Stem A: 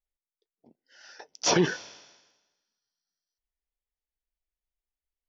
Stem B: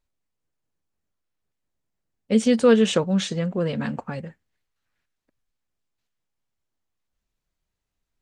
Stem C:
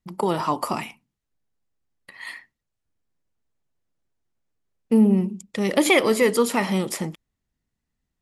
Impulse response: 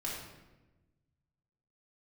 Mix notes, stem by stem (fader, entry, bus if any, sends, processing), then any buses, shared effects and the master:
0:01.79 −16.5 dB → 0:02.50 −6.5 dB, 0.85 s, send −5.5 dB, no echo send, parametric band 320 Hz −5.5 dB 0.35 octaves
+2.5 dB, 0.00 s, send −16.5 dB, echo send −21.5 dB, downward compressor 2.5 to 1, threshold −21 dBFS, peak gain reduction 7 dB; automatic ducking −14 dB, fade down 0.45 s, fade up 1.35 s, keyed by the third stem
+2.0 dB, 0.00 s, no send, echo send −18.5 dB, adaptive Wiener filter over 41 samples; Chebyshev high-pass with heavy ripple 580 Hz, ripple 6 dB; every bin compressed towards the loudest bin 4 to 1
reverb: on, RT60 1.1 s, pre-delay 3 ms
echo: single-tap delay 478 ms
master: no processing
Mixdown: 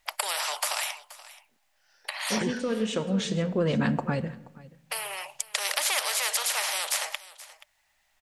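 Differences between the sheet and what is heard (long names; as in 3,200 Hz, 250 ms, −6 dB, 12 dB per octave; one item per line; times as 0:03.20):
stem A: send off
stem C: missing adaptive Wiener filter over 41 samples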